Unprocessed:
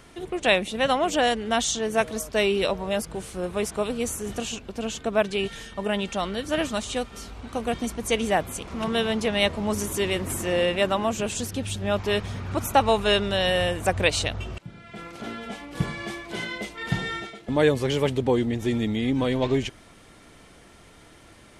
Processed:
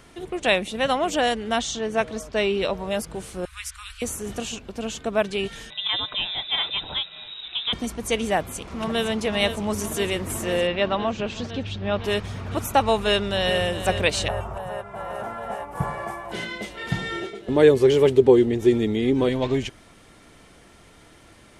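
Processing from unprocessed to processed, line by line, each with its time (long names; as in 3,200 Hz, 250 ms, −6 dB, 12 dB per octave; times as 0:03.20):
0:01.59–0:02.73: high-frequency loss of the air 65 metres
0:03.45–0:04.02: inverse Chebyshev band-stop filter 150–650 Hz, stop band 50 dB
0:05.70–0:07.73: voice inversion scrambler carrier 3,800 Hz
0:08.38–0:09.04: delay throw 510 ms, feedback 85%, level −8.5 dB
0:10.67–0:12.04: low-pass filter 4,700 Hz 24 dB per octave
0:12.95–0:13.58: delay throw 410 ms, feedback 80%, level −10.5 dB
0:14.28–0:16.32: drawn EQ curve 140 Hz 0 dB, 280 Hz −9 dB, 880 Hz +13 dB, 3,800 Hz −17 dB, 11,000 Hz +3 dB
0:17.11–0:19.29: parametric band 390 Hz +13.5 dB 0.42 octaves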